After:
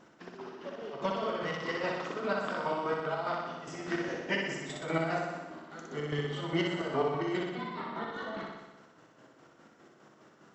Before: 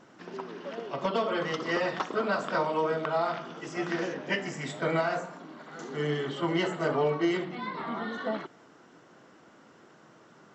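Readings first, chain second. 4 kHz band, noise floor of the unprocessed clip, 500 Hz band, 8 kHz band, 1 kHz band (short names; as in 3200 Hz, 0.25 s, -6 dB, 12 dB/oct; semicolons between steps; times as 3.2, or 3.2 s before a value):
-2.5 dB, -57 dBFS, -4.5 dB, n/a, -3.5 dB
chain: chopper 4.9 Hz, depth 65%, duty 40%; flutter echo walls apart 10.5 m, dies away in 1.1 s; gain -2.5 dB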